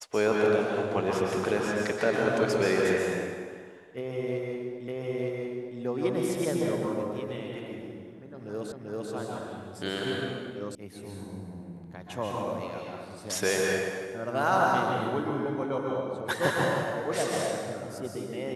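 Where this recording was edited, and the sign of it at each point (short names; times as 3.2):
4.88 repeat of the last 0.91 s
8.72 repeat of the last 0.39 s
10.75 sound cut off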